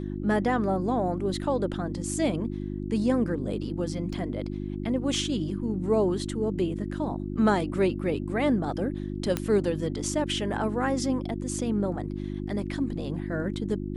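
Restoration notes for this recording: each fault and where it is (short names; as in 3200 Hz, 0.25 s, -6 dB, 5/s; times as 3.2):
hum 50 Hz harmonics 7 -33 dBFS
4.13 gap 4.4 ms
9.37 pop -12 dBFS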